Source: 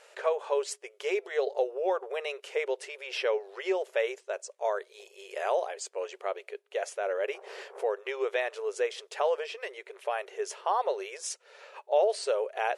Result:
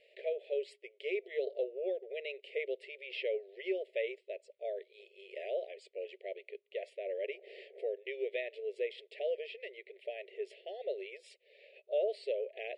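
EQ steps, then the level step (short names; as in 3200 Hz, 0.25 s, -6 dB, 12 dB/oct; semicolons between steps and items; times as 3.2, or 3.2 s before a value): elliptic band-stop 640–2000 Hz, stop band 40 dB; air absorption 130 m; fixed phaser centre 2700 Hz, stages 4; -3.0 dB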